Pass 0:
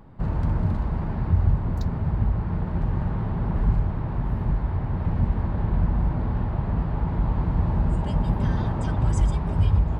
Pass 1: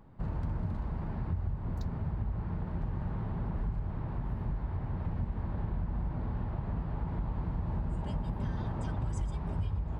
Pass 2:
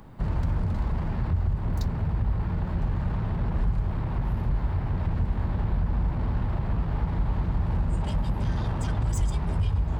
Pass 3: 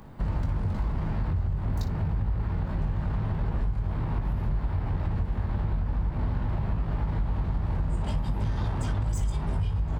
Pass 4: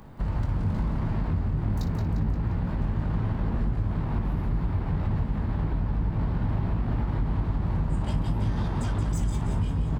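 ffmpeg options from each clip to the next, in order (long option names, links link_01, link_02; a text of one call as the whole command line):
ffmpeg -i in.wav -af "acompressor=threshold=-21dB:ratio=6,volume=-8dB" out.wav
ffmpeg -i in.wav -filter_complex "[0:a]highshelf=frequency=2600:gain=9.5,acrossover=split=110[link_01][link_02];[link_02]asoftclip=type=tanh:threshold=-39dB[link_03];[link_01][link_03]amix=inputs=2:normalize=0,volume=9dB" out.wav
ffmpeg -i in.wav -af "aecho=1:1:20|58:0.473|0.224,acompressor=threshold=-23dB:ratio=6" out.wav
ffmpeg -i in.wav -filter_complex "[0:a]asplit=7[link_01][link_02][link_03][link_04][link_05][link_06][link_07];[link_02]adelay=175,afreqshift=62,volume=-7.5dB[link_08];[link_03]adelay=350,afreqshift=124,volume=-13.2dB[link_09];[link_04]adelay=525,afreqshift=186,volume=-18.9dB[link_10];[link_05]adelay=700,afreqshift=248,volume=-24.5dB[link_11];[link_06]adelay=875,afreqshift=310,volume=-30.2dB[link_12];[link_07]adelay=1050,afreqshift=372,volume=-35.9dB[link_13];[link_01][link_08][link_09][link_10][link_11][link_12][link_13]amix=inputs=7:normalize=0" out.wav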